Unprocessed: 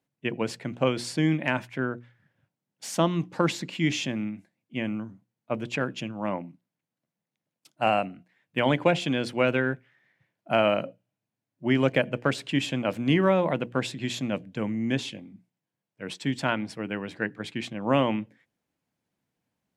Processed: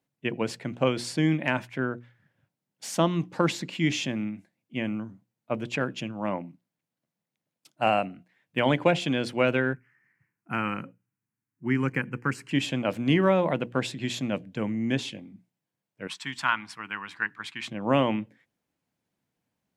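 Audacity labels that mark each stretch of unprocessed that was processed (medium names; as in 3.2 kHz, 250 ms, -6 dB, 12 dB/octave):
9.730000	12.510000	static phaser centre 1.5 kHz, stages 4
16.070000	17.680000	resonant low shelf 770 Hz -11.5 dB, Q 3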